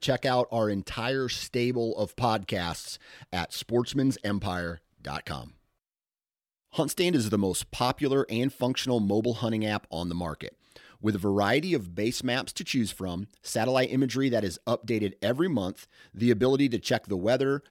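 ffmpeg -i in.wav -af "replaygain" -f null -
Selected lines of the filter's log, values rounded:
track_gain = +7.9 dB
track_peak = 0.217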